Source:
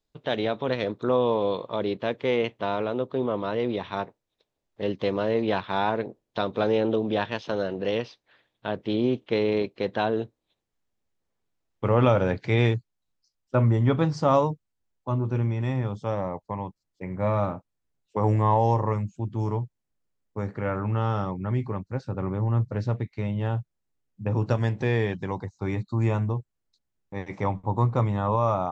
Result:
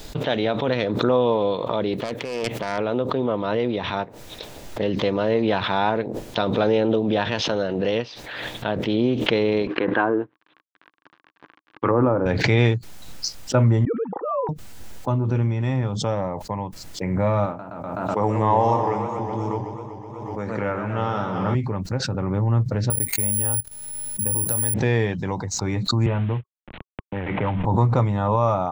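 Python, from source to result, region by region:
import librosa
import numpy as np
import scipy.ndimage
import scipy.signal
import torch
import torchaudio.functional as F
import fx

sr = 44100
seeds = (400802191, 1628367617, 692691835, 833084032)

y = fx.chain(x, sr, fx.self_delay(depth_ms=0.25),
    fx.over_compress(threshold_db=-32.0, ratio=-1.0),
    fx.quant_dither(seeds[0], bits=12, dither='none'), at=(1.93, 2.78))
y = fx.chain(y, sr, fx.law_mismatch(coded='A'),
    fx.env_lowpass_down(base_hz=690.0, full_db=-19.5),
    fx.cabinet(low_hz=160.0, low_slope=12, high_hz=3100.0, hz=(210.0, 310.0, 620.0, 1100.0, 1600.0), db=(-5, 8, -4, 9, 8)), at=(9.67, 12.26))
y = fx.chain(y, sr, fx.sine_speech(),
    fx.double_bandpass(hz=630.0, octaves=0.75), at=(13.85, 14.49))
y = fx.chain(y, sr, fx.highpass(hz=230.0, slope=6),
    fx.echo_warbled(ms=125, feedback_pct=78, rate_hz=2.8, cents=158, wet_db=-8.5), at=(17.46, 21.55))
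y = fx.chain(y, sr, fx.level_steps(step_db=16),
    fx.resample_bad(factor=4, down='none', up='zero_stuff'), at=(22.9, 24.74))
y = fx.chain(y, sr, fx.cvsd(bps=16000),
    fx.band_squash(depth_pct=40), at=(26.06, 27.65))
y = fx.peak_eq(y, sr, hz=390.0, db=-2.5, octaves=0.2)
y = fx.notch(y, sr, hz=1100.0, q=18.0)
y = fx.pre_swell(y, sr, db_per_s=30.0)
y = y * 10.0 ** (3.5 / 20.0)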